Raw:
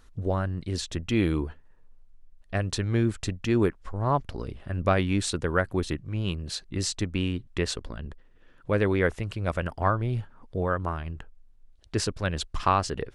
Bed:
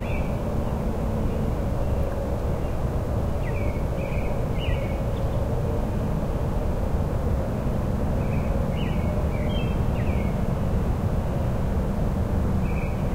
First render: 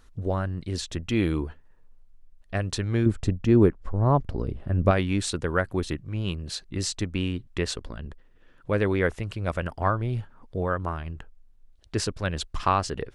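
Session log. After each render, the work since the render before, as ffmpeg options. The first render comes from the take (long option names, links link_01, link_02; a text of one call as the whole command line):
ffmpeg -i in.wav -filter_complex "[0:a]asettb=1/sr,asplit=3[link_01][link_02][link_03];[link_01]atrim=end=3.064[link_04];[link_02]atrim=start=3.06:end=4.91,asetpts=PTS-STARTPTS,afade=type=in:duration=0.004:curve=qsin,afade=type=out:start_time=1.846:duration=0.004:curve=qsin,tiltshelf=frequency=970:gain=6.5[link_05];[link_03]atrim=start=4.906[link_06];[link_04][link_05]acrossfade=duration=0.004:curve1=hsin:curve2=qsin[link_07];[link_07][link_06]acrossfade=duration=0.004:curve1=qsin:curve2=hsin" out.wav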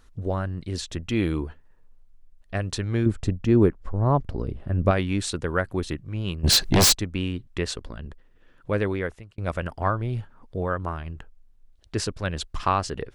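ffmpeg -i in.wav -filter_complex "[0:a]asplit=3[link_01][link_02][link_03];[link_01]afade=type=out:start_time=6.43:duration=0.02[link_04];[link_02]aeval=exprs='0.224*sin(PI/2*6.31*val(0)/0.224)':channel_layout=same,afade=type=in:start_time=6.43:duration=0.02,afade=type=out:start_time=6.93:duration=0.02[link_05];[link_03]afade=type=in:start_time=6.93:duration=0.02[link_06];[link_04][link_05][link_06]amix=inputs=3:normalize=0,asplit=2[link_07][link_08];[link_07]atrim=end=9.38,asetpts=PTS-STARTPTS,afade=type=out:start_time=8.77:duration=0.61[link_09];[link_08]atrim=start=9.38,asetpts=PTS-STARTPTS,afade=type=in:duration=0.004:curve=hsin[link_10];[link_09][link_10]concat=n=2:v=0:a=1" out.wav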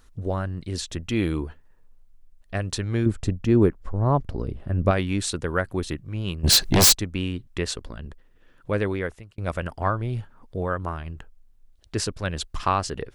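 ffmpeg -i in.wav -af "highshelf=frequency=7300:gain=5.5" out.wav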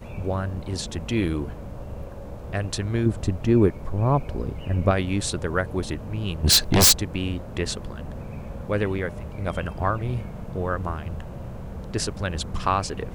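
ffmpeg -i in.wav -i bed.wav -filter_complex "[1:a]volume=-11dB[link_01];[0:a][link_01]amix=inputs=2:normalize=0" out.wav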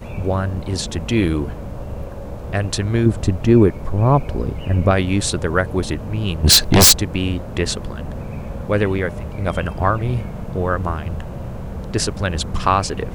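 ffmpeg -i in.wav -af "volume=6.5dB,alimiter=limit=-2dB:level=0:latency=1" out.wav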